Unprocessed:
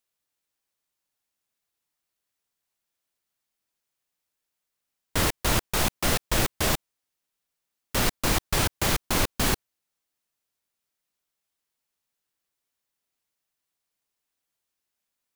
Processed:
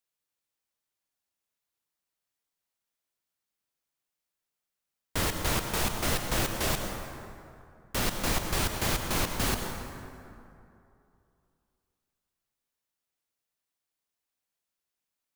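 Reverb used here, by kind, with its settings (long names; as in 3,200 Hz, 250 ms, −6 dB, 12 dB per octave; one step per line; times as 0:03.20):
dense smooth reverb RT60 2.7 s, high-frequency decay 0.5×, pre-delay 85 ms, DRR 4.5 dB
level −5 dB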